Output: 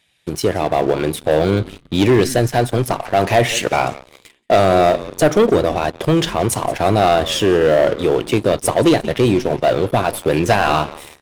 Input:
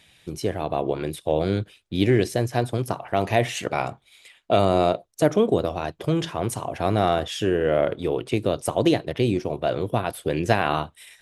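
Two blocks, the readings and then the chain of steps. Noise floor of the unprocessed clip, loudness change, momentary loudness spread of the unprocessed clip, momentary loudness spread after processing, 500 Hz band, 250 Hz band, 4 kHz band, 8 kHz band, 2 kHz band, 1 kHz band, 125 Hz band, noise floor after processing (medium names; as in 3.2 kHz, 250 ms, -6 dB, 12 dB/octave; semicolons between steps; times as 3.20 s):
-60 dBFS, +7.5 dB, 8 LU, 6 LU, +8.0 dB, +6.5 dB, +9.0 dB, +11.0 dB, +8.5 dB, +8.0 dB, +5.5 dB, -52 dBFS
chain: bass shelf 260 Hz -4.5 dB; on a send: frequency-shifting echo 177 ms, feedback 45%, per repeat -120 Hz, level -19.5 dB; on the sum: waveshaping leveller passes 3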